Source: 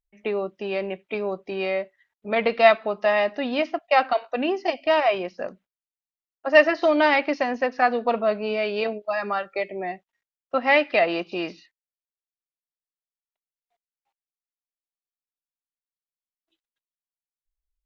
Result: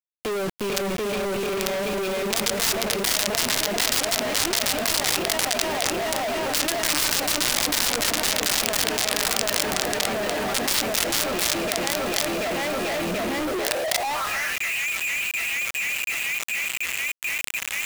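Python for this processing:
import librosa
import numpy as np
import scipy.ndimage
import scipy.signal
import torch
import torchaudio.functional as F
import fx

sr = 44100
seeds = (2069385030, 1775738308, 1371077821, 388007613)

y = fx.echo_swing(x, sr, ms=733, ratio=1.5, feedback_pct=71, wet_db=-3.5)
y = fx.filter_sweep_highpass(y, sr, from_hz=120.0, to_hz=2400.0, start_s=12.89, end_s=14.69, q=7.0)
y = (np.mod(10.0 ** (12.5 / 20.0) * y + 1.0, 2.0) - 1.0) / 10.0 ** (12.5 / 20.0)
y = fx.dynamic_eq(y, sr, hz=5100.0, q=2.3, threshold_db=-40.0, ratio=4.0, max_db=3)
y = fx.quant_companded(y, sr, bits=2)
y = fx.env_flatten(y, sr, amount_pct=70)
y = y * librosa.db_to_amplitude(-11.0)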